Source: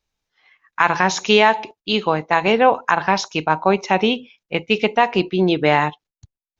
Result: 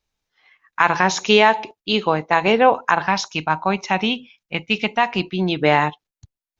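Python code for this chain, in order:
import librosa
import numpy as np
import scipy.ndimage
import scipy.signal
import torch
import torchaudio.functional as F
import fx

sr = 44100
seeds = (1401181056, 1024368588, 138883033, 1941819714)

y = fx.peak_eq(x, sr, hz=450.0, db=-9.5, octaves=1.0, at=(3.07, 5.61))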